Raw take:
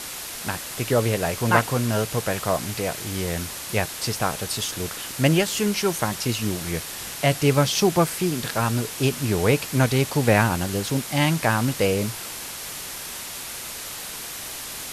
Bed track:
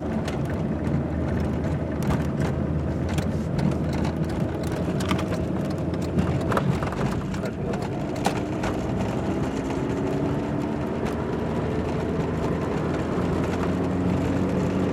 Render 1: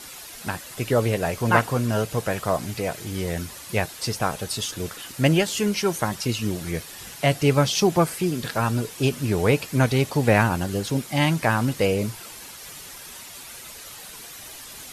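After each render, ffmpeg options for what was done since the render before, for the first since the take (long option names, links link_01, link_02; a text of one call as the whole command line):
ffmpeg -i in.wav -af "afftdn=noise_reduction=9:noise_floor=-35" out.wav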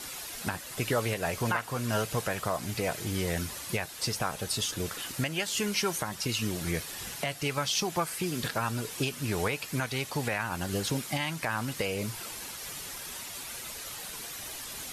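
ffmpeg -i in.wav -filter_complex "[0:a]acrossover=split=840[link_01][link_02];[link_01]acompressor=threshold=-28dB:ratio=6[link_03];[link_03][link_02]amix=inputs=2:normalize=0,alimiter=limit=-17.5dB:level=0:latency=1:release=357" out.wav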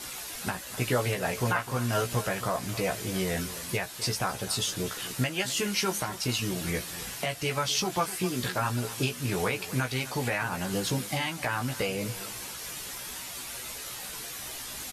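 ffmpeg -i in.wav -filter_complex "[0:a]asplit=2[link_01][link_02];[link_02]adelay=16,volume=-4.5dB[link_03];[link_01][link_03]amix=inputs=2:normalize=0,asplit=2[link_04][link_05];[link_05]adelay=256.6,volume=-15dB,highshelf=frequency=4000:gain=-5.77[link_06];[link_04][link_06]amix=inputs=2:normalize=0" out.wav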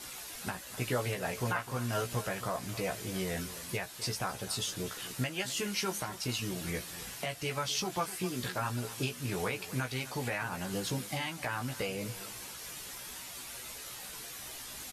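ffmpeg -i in.wav -af "volume=-5.5dB" out.wav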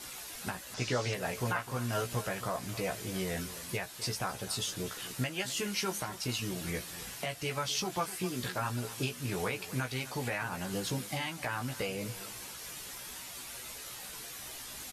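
ffmpeg -i in.wav -filter_complex "[0:a]asettb=1/sr,asplit=3[link_01][link_02][link_03];[link_01]atrim=end=0.744[link_04];[link_02]atrim=start=0.74:end=1.14,asetpts=PTS-STARTPTS,afade=type=in:duration=0.004:curve=qsin,afade=type=out:start_time=0.396:duration=0.004:curve=qsin,lowpass=frequency=5700:width_type=q:width=2.6[link_05];[link_03]atrim=start=1.136[link_06];[link_04][link_05]acrossfade=duration=0.004:curve1=hsin:curve2=qsin[link_07];[link_07][link_06]acrossfade=duration=0.004:curve1=qsin:curve2=hsin" out.wav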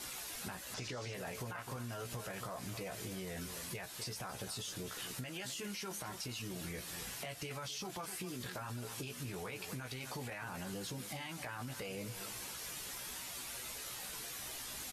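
ffmpeg -i in.wav -af "alimiter=level_in=5.5dB:limit=-24dB:level=0:latency=1:release=17,volume=-5.5dB,acompressor=threshold=-40dB:ratio=6" out.wav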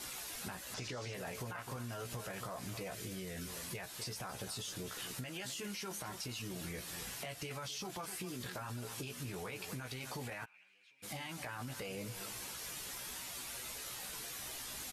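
ffmpeg -i in.wav -filter_complex "[0:a]asettb=1/sr,asplit=3[link_01][link_02][link_03];[link_01]atrim=end=2.944[link_04];[link_02]atrim=start=2.94:end=3.47,asetpts=PTS-STARTPTS,afade=type=in:duration=0.004:curve=qsin,afade=type=out:start_time=0.526:duration=0.004:curve=qsin,equalizer=frequency=860:width_type=o:width=0.91:gain=-7.5[link_05];[link_03]atrim=start=3.466[link_06];[link_04][link_05]acrossfade=duration=0.004:curve1=hsin:curve2=qsin[link_07];[link_07][link_06]acrossfade=duration=0.004:curve1=qsin:curve2=hsin,asplit=3[link_08][link_09][link_10];[link_08]afade=type=out:start_time=10.44:duration=0.02[link_11];[link_09]bandpass=frequency=2400:width_type=q:width=13,afade=type=in:start_time=10.44:duration=0.02,afade=type=out:start_time=11.02:duration=0.02[link_12];[link_10]afade=type=in:start_time=11.02:duration=0.02[link_13];[link_11][link_12][link_13]amix=inputs=3:normalize=0" out.wav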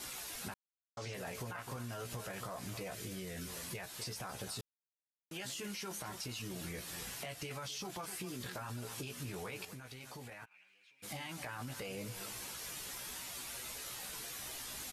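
ffmpeg -i in.wav -filter_complex "[0:a]asplit=7[link_01][link_02][link_03][link_04][link_05][link_06][link_07];[link_01]atrim=end=0.54,asetpts=PTS-STARTPTS,afade=type=out:start_time=0.536:duration=0.004:curve=hsin[link_08];[link_02]atrim=start=0.54:end=0.97,asetpts=PTS-STARTPTS,volume=0[link_09];[link_03]atrim=start=0.97:end=4.61,asetpts=PTS-STARTPTS,afade=type=in:duration=0.004:curve=hsin,afade=type=out:start_time=3.636:duration=0.004:curve=hsin[link_10];[link_04]atrim=start=4.61:end=5.31,asetpts=PTS-STARTPTS,volume=0[link_11];[link_05]atrim=start=5.31:end=9.652,asetpts=PTS-STARTPTS,afade=type=in:duration=0.004:curve=hsin[link_12];[link_06]atrim=start=9.648:end=10.512,asetpts=PTS-STARTPTS,volume=-6dB[link_13];[link_07]atrim=start=10.508[link_14];[link_08][link_09][link_10][link_11][link_12]concat=n=5:v=0:a=1[link_15];[link_15][link_13]acrossfade=duration=0.004:curve1=hsin:curve2=hsin[link_16];[link_16][link_14]acrossfade=duration=0.004:curve1=hsin:curve2=hsin" out.wav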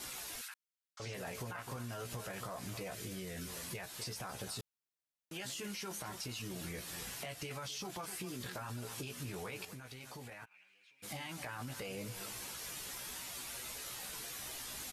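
ffmpeg -i in.wav -filter_complex "[0:a]asettb=1/sr,asplit=3[link_01][link_02][link_03];[link_01]atrim=end=0.414[link_04];[link_02]atrim=start=0.41:end=1,asetpts=PTS-STARTPTS,afade=type=in:duration=0.004:curve=qsin,afade=type=out:start_time=0.586:duration=0.004:curve=qsin,highpass=frequency=1400:width=0.5412,highpass=frequency=1400:width=1.3066[link_05];[link_03]atrim=start=0.996[link_06];[link_04][link_05]acrossfade=duration=0.004:curve1=hsin:curve2=qsin[link_07];[link_07][link_06]acrossfade=duration=0.004:curve1=qsin:curve2=hsin" out.wav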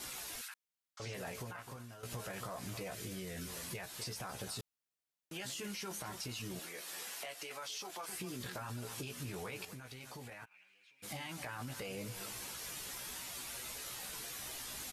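ffmpeg -i in.wav -filter_complex "[0:a]asettb=1/sr,asplit=3[link_01][link_02][link_03];[link_01]atrim=end=6.594[link_04];[link_02]atrim=start=6.59:end=8.09,asetpts=PTS-STARTPTS,afade=type=in:duration=0.004:curve=qsin,afade=type=out:start_time=1.496:duration=0.004:curve=qsin,highpass=440[link_05];[link_03]atrim=start=8.086[link_06];[link_04][link_05]acrossfade=duration=0.004:curve1=hsin:curve2=qsin[link_07];[link_07][link_06]acrossfade=duration=0.004:curve1=qsin:curve2=hsin,asplit=2[link_08][link_09];[link_08]atrim=end=2.03,asetpts=PTS-STARTPTS,afade=type=out:start_time=1.25:duration=0.78:silence=0.266073[link_10];[link_09]atrim=start=2.03,asetpts=PTS-STARTPTS,afade=type=in:duration=0.004:curve=hsin:silence=0.266073[link_11];[link_10][link_11]concat=n=2:v=0:a=1" out.wav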